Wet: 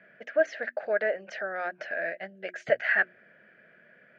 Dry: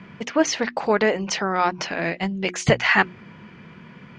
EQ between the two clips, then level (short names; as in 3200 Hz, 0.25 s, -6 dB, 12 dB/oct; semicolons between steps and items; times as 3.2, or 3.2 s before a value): double band-pass 1000 Hz, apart 1.4 oct; 0.0 dB